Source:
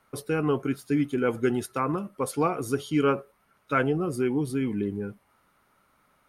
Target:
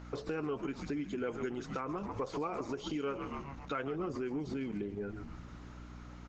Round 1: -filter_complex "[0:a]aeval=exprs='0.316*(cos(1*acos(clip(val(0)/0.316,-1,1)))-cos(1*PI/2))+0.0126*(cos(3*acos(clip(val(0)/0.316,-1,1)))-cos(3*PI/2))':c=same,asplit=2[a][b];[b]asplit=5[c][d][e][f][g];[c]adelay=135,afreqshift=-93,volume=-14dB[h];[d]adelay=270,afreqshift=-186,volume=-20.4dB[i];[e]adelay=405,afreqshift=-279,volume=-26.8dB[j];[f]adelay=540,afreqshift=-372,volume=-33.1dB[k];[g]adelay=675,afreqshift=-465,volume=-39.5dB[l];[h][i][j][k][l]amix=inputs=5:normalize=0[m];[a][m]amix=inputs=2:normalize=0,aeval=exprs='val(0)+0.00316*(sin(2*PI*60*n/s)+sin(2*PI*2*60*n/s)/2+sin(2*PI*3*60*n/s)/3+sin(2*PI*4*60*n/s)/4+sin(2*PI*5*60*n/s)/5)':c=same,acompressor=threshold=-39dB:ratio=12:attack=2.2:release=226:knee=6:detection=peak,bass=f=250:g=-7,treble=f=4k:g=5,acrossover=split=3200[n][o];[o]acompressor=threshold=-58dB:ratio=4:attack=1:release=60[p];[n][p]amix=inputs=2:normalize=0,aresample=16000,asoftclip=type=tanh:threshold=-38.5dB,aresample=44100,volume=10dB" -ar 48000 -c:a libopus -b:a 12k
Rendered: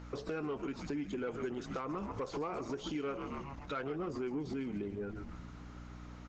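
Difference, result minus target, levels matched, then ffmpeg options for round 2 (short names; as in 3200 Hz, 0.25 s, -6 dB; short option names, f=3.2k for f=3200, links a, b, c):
soft clip: distortion +12 dB
-filter_complex "[0:a]aeval=exprs='0.316*(cos(1*acos(clip(val(0)/0.316,-1,1)))-cos(1*PI/2))+0.0126*(cos(3*acos(clip(val(0)/0.316,-1,1)))-cos(3*PI/2))':c=same,asplit=2[a][b];[b]asplit=5[c][d][e][f][g];[c]adelay=135,afreqshift=-93,volume=-14dB[h];[d]adelay=270,afreqshift=-186,volume=-20.4dB[i];[e]adelay=405,afreqshift=-279,volume=-26.8dB[j];[f]adelay=540,afreqshift=-372,volume=-33.1dB[k];[g]adelay=675,afreqshift=-465,volume=-39.5dB[l];[h][i][j][k][l]amix=inputs=5:normalize=0[m];[a][m]amix=inputs=2:normalize=0,aeval=exprs='val(0)+0.00316*(sin(2*PI*60*n/s)+sin(2*PI*2*60*n/s)/2+sin(2*PI*3*60*n/s)/3+sin(2*PI*4*60*n/s)/4+sin(2*PI*5*60*n/s)/5)':c=same,acompressor=threshold=-39dB:ratio=12:attack=2.2:release=226:knee=6:detection=peak,bass=f=250:g=-7,treble=f=4k:g=5,acrossover=split=3200[n][o];[o]acompressor=threshold=-58dB:ratio=4:attack=1:release=60[p];[n][p]amix=inputs=2:normalize=0,aresample=16000,asoftclip=type=tanh:threshold=-31dB,aresample=44100,volume=10dB" -ar 48000 -c:a libopus -b:a 12k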